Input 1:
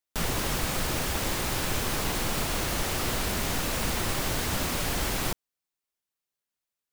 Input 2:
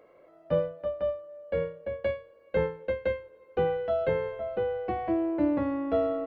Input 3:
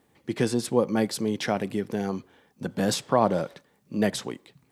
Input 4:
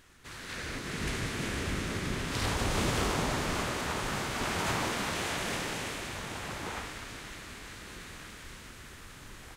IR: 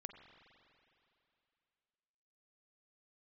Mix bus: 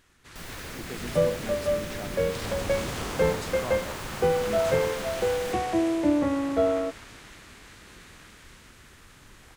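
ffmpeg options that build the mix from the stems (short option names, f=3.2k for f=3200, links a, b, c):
-filter_complex "[0:a]adelay=200,volume=-13dB[a];[1:a]adelay=650,volume=3dB[b];[2:a]adelay=500,volume=-14.5dB[c];[3:a]volume=-3.5dB[d];[a][b][c][d]amix=inputs=4:normalize=0"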